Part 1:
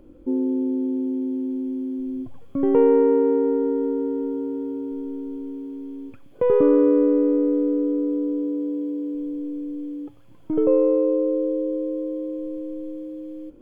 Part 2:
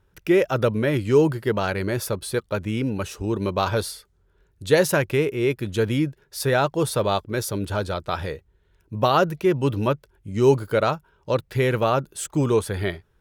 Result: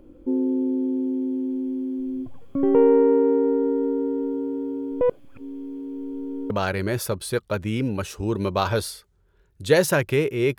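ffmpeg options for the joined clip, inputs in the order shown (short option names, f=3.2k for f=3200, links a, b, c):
-filter_complex "[0:a]apad=whole_dur=10.58,atrim=end=10.58,asplit=2[a][b];[a]atrim=end=5.012[c];[b]atrim=start=5.008:end=6.502,asetpts=PTS-STARTPTS,areverse[d];[1:a]atrim=start=1.508:end=5.59[e];[c][d]acrossfade=d=0.004:c1=hsin:c2=hsin[f];[f][e]acrossfade=d=0.004:c1=hsin:c2=hsin"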